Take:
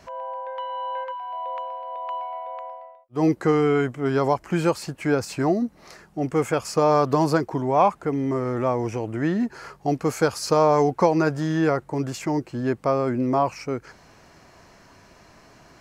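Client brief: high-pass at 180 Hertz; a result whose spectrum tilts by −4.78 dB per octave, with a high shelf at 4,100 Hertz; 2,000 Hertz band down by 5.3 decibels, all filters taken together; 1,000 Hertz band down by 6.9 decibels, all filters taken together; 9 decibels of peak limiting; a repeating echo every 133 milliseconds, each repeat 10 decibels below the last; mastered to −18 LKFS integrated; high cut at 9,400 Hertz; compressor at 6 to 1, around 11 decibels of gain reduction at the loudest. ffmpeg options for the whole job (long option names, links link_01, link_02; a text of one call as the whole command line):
ffmpeg -i in.wav -af "highpass=180,lowpass=9400,equalizer=frequency=1000:width_type=o:gain=-8.5,equalizer=frequency=2000:width_type=o:gain=-5,highshelf=frequency=4100:gain=7,acompressor=threshold=-29dB:ratio=6,alimiter=level_in=2dB:limit=-24dB:level=0:latency=1,volume=-2dB,aecho=1:1:133|266|399|532:0.316|0.101|0.0324|0.0104,volume=17.5dB" out.wav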